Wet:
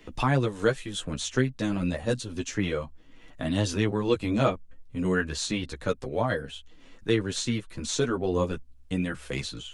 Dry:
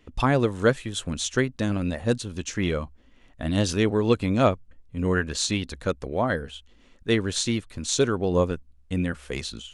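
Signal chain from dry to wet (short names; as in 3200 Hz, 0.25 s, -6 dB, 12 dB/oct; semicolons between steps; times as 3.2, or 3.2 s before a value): chorus voices 4, 0.28 Hz, delay 11 ms, depth 4.9 ms; three-band squash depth 40%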